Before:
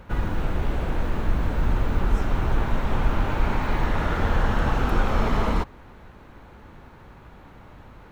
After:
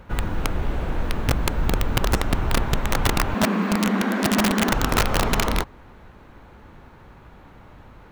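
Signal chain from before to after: 3.34–4.72 frequency shift +180 Hz; wrapped overs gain 13 dB

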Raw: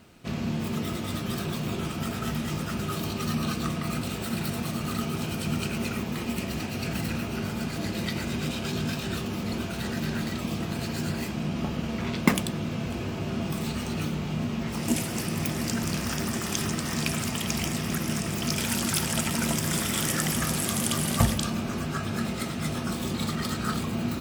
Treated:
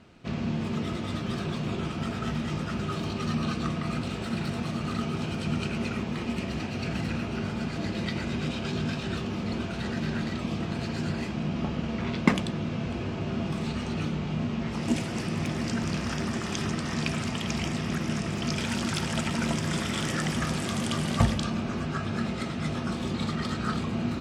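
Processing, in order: air absorption 94 m

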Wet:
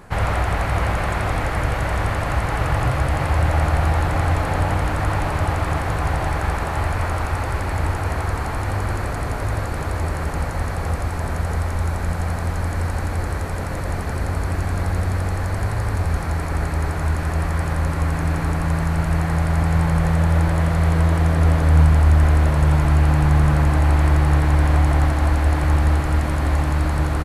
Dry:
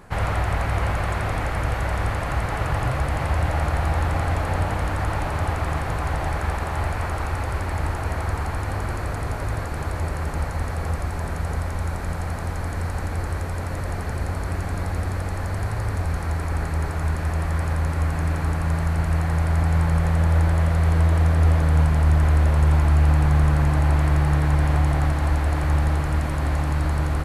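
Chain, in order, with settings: echo 0.153 s -10 dB; gain +3 dB

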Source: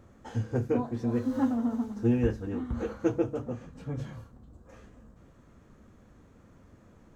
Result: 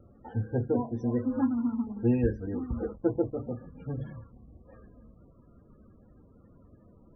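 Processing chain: high shelf 4000 Hz +3.5 dB; 2.9–3.37 backlash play -36 dBFS; loudest bins only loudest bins 32; 1.41–1.87 band shelf 560 Hz -13.5 dB 1 oct; vibrato 2 Hz 28 cents

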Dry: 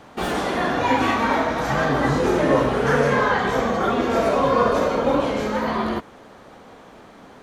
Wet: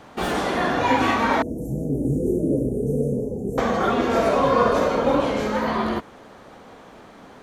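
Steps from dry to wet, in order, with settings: 1.42–3.58 inverse Chebyshev band-stop 1100–3800 Hz, stop band 60 dB

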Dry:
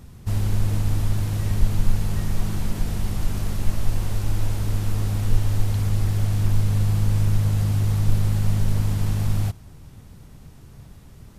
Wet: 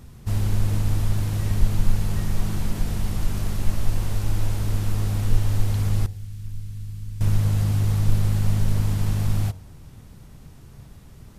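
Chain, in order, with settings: 6.06–7.21 passive tone stack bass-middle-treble 6-0-2; de-hum 91.83 Hz, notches 10

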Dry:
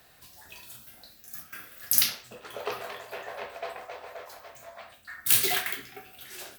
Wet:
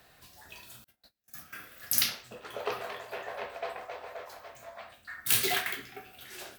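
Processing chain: high shelf 5400 Hz -5.5 dB; 0.84–1.46 gate -50 dBFS, range -31 dB

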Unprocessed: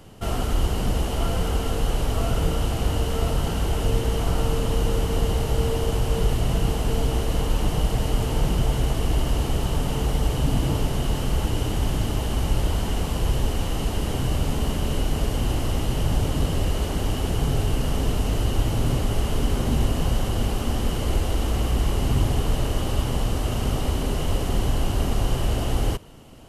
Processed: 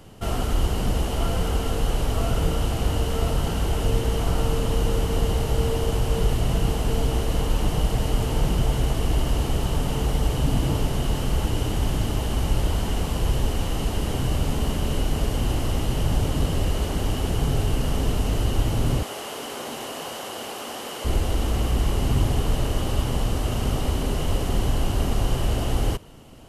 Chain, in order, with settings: 19.03–21.05 HPF 490 Hz 12 dB/oct

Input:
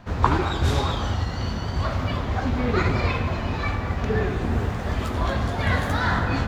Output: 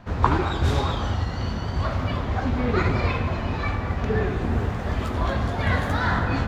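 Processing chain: high shelf 4100 Hz -5 dB

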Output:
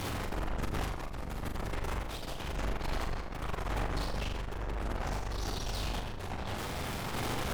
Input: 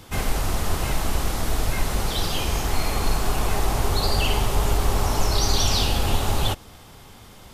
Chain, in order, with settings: infinite clipping; spectral gate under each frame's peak -25 dB strong; high shelf 2600 Hz -11 dB; wavefolder -23.5 dBFS; random-step tremolo; on a send: flutter echo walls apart 7.1 m, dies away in 0.44 s; on the sum: record warp 45 rpm, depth 100 cents; gain -6.5 dB

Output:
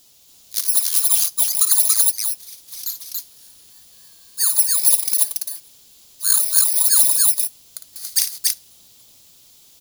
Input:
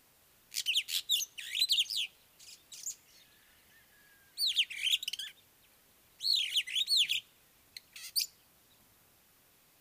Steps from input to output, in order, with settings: FFT order left unsorted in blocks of 16 samples; resonant high shelf 2400 Hz +10 dB, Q 1.5; loudspeakers at several distances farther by 19 m -9 dB, 97 m -1 dB; gain +3.5 dB

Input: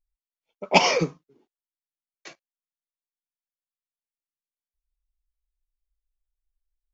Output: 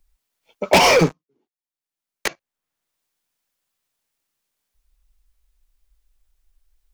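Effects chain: 0.73–2.28 sample leveller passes 5; three-band squash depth 70%; gain -3 dB

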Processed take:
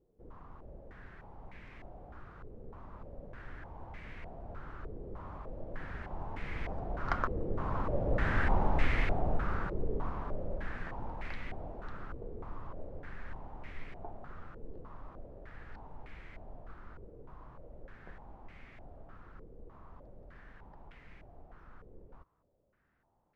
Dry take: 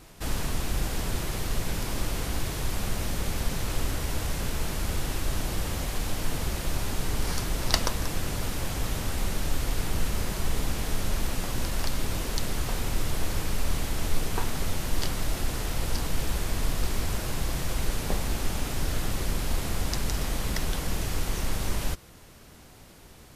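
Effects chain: Doppler pass-by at 8.53, 28 m/s, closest 17 m; stepped low-pass 3.3 Hz 460–2100 Hz

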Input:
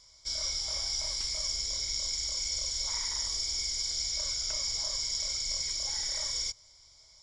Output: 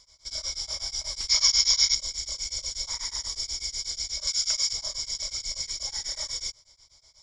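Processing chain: 1.3–1.94 spectral gain 800–7000 Hz +12 dB; 4.27–4.73 tilt shelf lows -7 dB; beating tremolo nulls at 8.2 Hz; gain +3 dB

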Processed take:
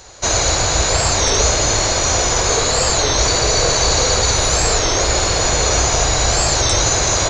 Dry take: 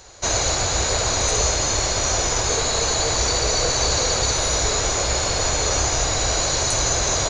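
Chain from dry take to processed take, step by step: spring tank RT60 3.3 s, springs 38/51 ms, chirp 65 ms, DRR 5.5 dB; record warp 33 1/3 rpm, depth 160 cents; gain +4.5 dB

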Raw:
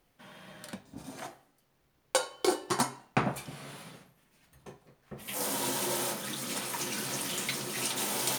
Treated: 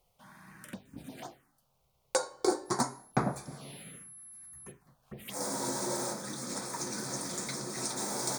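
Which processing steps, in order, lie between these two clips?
2.65–4.7 whine 11000 Hz -47 dBFS; envelope phaser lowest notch 270 Hz, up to 2900 Hz, full sweep at -36.5 dBFS

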